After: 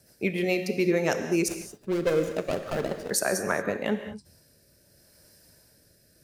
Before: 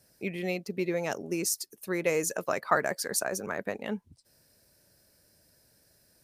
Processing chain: 1.48–3.11 s: median filter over 41 samples; rotary cabinet horn 7 Hz, later 0.75 Hz, at 2.98 s; gated-style reverb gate 250 ms flat, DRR 7.5 dB; trim +7.5 dB

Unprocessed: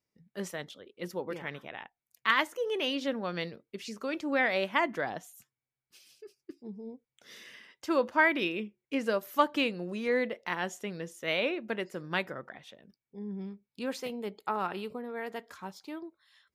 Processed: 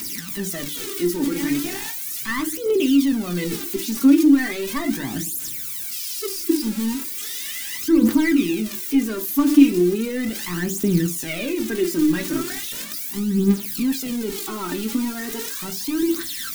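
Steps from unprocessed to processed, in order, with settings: zero-crossing glitches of -24 dBFS; waveshaping leveller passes 3; in parallel at +2 dB: compressor with a negative ratio -29 dBFS, ratio -1; on the sum: resonant low shelf 410 Hz +9.5 dB, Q 3; on a send at -4.5 dB: reverberation RT60 0.30 s, pre-delay 3 ms; on the sum: phaser 0.37 Hz, delay 3.7 ms, feedback 65%; trim -14 dB

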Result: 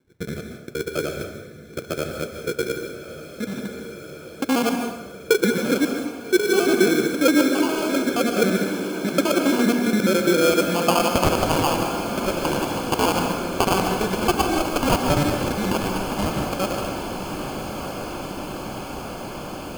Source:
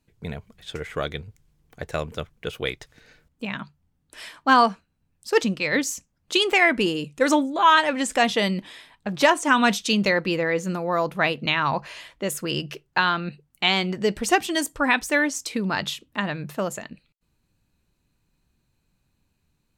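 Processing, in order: time reversed locally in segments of 68 ms; high-pass 160 Hz 6 dB/octave; treble shelf 4.7 kHz -8.5 dB; band-stop 430 Hz, Q 14; in parallel at -1.5 dB: compression, threshold -34 dBFS, peak gain reduction 19.5 dB; on the sum: added noise violet -37 dBFS; low-pass sweep 410 Hz -> 6.2 kHz, 10.33–11.51 s; sample-rate reducer 1.9 kHz, jitter 0%; on a send: echo that smears into a reverb 1221 ms, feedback 78%, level -10.5 dB; on the sum: plate-style reverb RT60 0.92 s, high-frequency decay 0.75×, pre-delay 120 ms, DRR 4.5 dB

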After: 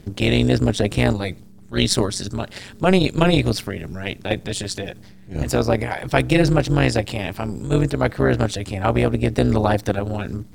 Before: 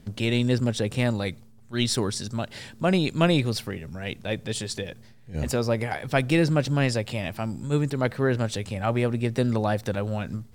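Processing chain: in parallel at +2 dB: level held to a coarse grid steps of 13 dB; on the sum: AM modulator 190 Hz, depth 75%; trim +4.5 dB

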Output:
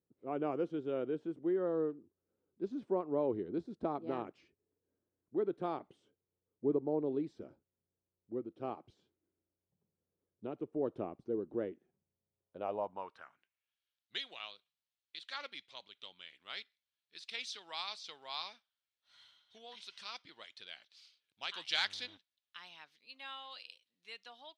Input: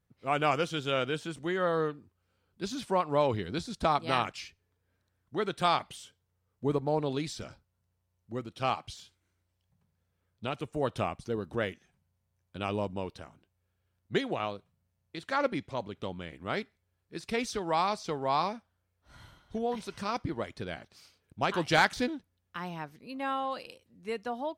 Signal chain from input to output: band-pass sweep 350 Hz -> 3.6 kHz, 12.33–13.80 s; 21.76–22.16 s: mains buzz 100 Hz, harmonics 34, -66 dBFS -3 dB/octave; trim +1 dB

